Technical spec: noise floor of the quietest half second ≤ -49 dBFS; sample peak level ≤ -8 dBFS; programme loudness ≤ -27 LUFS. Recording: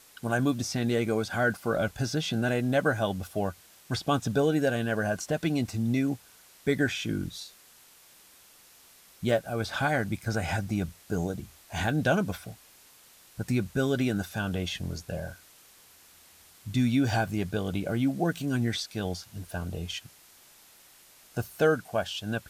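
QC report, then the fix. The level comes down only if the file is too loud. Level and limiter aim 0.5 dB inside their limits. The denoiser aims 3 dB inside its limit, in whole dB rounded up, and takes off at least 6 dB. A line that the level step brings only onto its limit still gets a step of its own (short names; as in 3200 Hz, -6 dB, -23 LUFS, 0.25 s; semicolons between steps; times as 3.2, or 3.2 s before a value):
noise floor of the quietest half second -56 dBFS: OK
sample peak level -12.0 dBFS: OK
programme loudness -29.5 LUFS: OK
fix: none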